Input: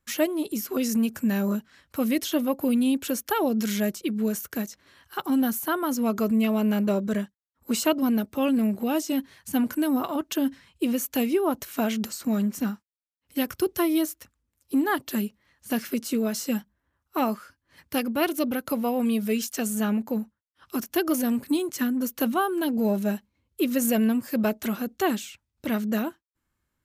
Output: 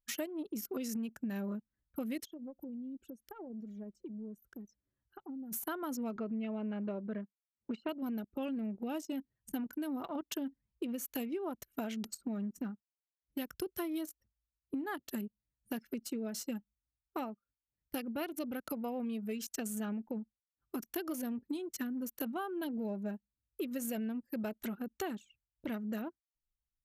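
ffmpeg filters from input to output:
-filter_complex "[0:a]asplit=3[s0][s1][s2];[s0]afade=t=out:st=2.24:d=0.02[s3];[s1]acompressor=threshold=0.0158:ratio=8:attack=3.2:release=140:knee=1:detection=peak,afade=t=in:st=2.24:d=0.02,afade=t=out:st=5.51:d=0.02[s4];[s2]afade=t=in:st=5.51:d=0.02[s5];[s3][s4][s5]amix=inputs=3:normalize=0,asettb=1/sr,asplit=3[s6][s7][s8];[s6]atrim=end=6.164[s9];[s7]atrim=start=6.16:end=7.89,asetpts=PTS-STARTPTS,afade=t=in:d=0.004:c=qsin,afade=t=out:st=1.726:d=0.004:c=qsin,highpass=130,lowpass=2800[s10];[s8]atrim=start=7.886[s11];[s9][s10]acrossfade=d=0.004:c1=hsin:c2=qsin[s12];[s12][s11]acrossfade=d=0.004:c1=qsin:c2=hsin,asplit=3[s13][s14][s15];[s13]atrim=end=17.36,asetpts=PTS-STARTPTS,afade=t=out:st=17.19:d=0.17:silence=0.354813[s16];[s14]atrim=start=17.36:end=17.78,asetpts=PTS-STARTPTS,volume=0.355[s17];[s15]atrim=start=17.78,asetpts=PTS-STARTPTS,afade=t=in:d=0.17:silence=0.354813[s18];[s16][s17][s18]concat=n=3:v=0:a=1,bandreject=f=1100:w=15,anlmdn=10,acompressor=threshold=0.0224:ratio=4,volume=0.631"

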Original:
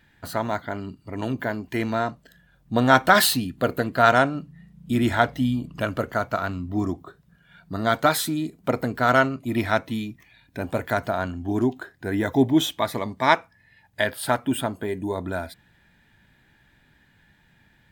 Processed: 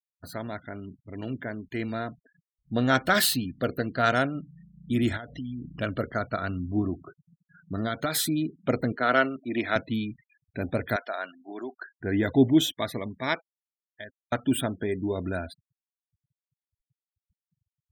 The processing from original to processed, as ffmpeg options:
-filter_complex "[0:a]asplit=3[s0][s1][s2];[s0]afade=t=out:st=5.16:d=0.02[s3];[s1]acompressor=threshold=0.0355:ratio=8:attack=3.2:release=140:knee=1:detection=peak,afade=t=in:st=5.16:d=0.02,afade=t=out:st=5.8:d=0.02[s4];[s2]afade=t=in:st=5.8:d=0.02[s5];[s3][s4][s5]amix=inputs=3:normalize=0,asettb=1/sr,asplit=3[s6][s7][s8];[s6]atrim=end=6.814[s9];[s7]atrim=start=6.81:end=8.15,asetpts=PTS-STARTPTS,afade=t=in:d=0.004:c=qsin,afade=t=out:st=1.336:d=0.004:c=qsin,acompressor=threshold=0.0708:ratio=2.5:attack=3.2:release=140:knee=1:detection=peak[s10];[s8]atrim=start=8.146[s11];[s9][s10]acrossfade=d=0.004:c1=hsin:c2=qsin[s12];[s12][s11]acrossfade=d=0.004:c1=qsin:c2=hsin,asettb=1/sr,asplit=3[s13][s14][s15];[s13]atrim=end=8.924[s16];[s14]atrim=start=8.92:end=9.76,asetpts=PTS-STARTPTS,afade=t=in:d=0.004:c=qsin,afade=t=out:st=0.836:d=0.004:c=qsin,acrossover=split=240 5000:gain=0.158 1 0.178[s17][s18][s19];[s17][s18][s19]amix=inputs=3:normalize=0[s20];[s15]atrim=start=9.756[s21];[s16][s20]acrossfade=d=0.004:c1=hsin:c2=qsin[s22];[s22][s21]acrossfade=d=0.004:c1=qsin:c2=hsin,asettb=1/sr,asplit=3[s23][s24][s25];[s23]atrim=end=10.964[s26];[s24]atrim=start=10.96:end=11.95,asetpts=PTS-STARTPTS,afade=t=in:d=0.004:c=qsin,afade=t=out:st=0.986:d=0.004:c=qsin,highpass=700,lowpass=7100[s27];[s25]atrim=start=11.946[s28];[s26][s27]acrossfade=d=0.004:c1=hsin:c2=qsin[s29];[s29][s28]acrossfade=d=0.004:c1=qsin:c2=hsin,asplit=2[s30][s31];[s30]atrim=end=14.32,asetpts=PTS-STARTPTS,afade=t=out:st=12.46:d=1.86[s32];[s31]atrim=start=14.32,asetpts=PTS-STARTPTS,afade=t=in:d=0.004:c=hsin[s33];[s32][s33]concat=n=2:v=0:a=1,afftfilt=real='re*gte(hypot(re,im),0.0112)':imag='im*gte(hypot(re,im),0.0112)':win_size=1024:overlap=0.75,equalizer=f=930:w=1.9:g=-10.5,dynaudnorm=f=330:g=13:m=2.24,volume=0.501"

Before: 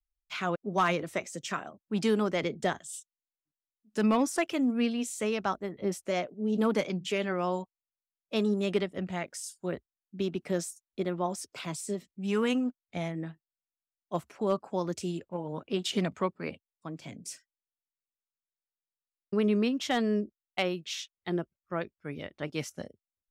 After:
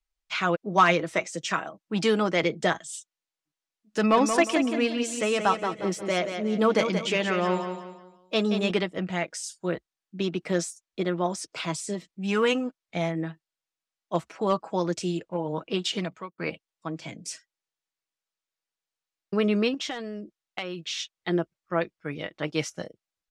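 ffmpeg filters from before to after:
-filter_complex "[0:a]asettb=1/sr,asplit=3[s0][s1][s2];[s0]atrim=end=3.994[s3];[s1]atrim=start=3.99:end=8.71,asetpts=PTS-STARTPTS,afade=t=in:d=0.004:c=qsin,afade=t=out:st=4.716:d=0.004:c=qsin,aecho=1:1:179|358|537|716:0.422|0.152|0.0547|0.0197,atrim=end_sample=208152[s4];[s2]atrim=start=8.706[s5];[s3][s4]acrossfade=d=0.004:c1=hsin:c2=qsin[s6];[s6][s5]acrossfade=d=0.004:c1=qsin:c2=hsin,asettb=1/sr,asplit=3[s7][s8][s9];[s7]atrim=end=19.744[s10];[s8]atrim=start=19.74:end=21,asetpts=PTS-STARTPTS,afade=t=in:d=0.004:c=qsin,afade=t=out:st=1.256:d=0.004:c=qsin,acompressor=threshold=0.0178:ratio=6:attack=3.2:release=140:knee=1:detection=peak[s11];[s9]atrim=start=20.996[s12];[s10][s11]acrossfade=d=0.004:c1=hsin:c2=qsin[s13];[s13][s12]acrossfade=d=0.004:c1=qsin:c2=hsin,asplit=2[s14][s15];[s14]atrim=end=16.38,asetpts=PTS-STARTPTS,afade=t=out:st=15.69:d=0.69[s16];[s15]atrim=start=16.38,asetpts=PTS-STARTPTS,afade=t=in:d=0.004:c=hsin[s17];[s16][s17]concat=n=2:v=0:a=1,lowpass=7200,lowshelf=f=300:g=-7,aecho=1:1:6.2:0.42,volume=2.24"

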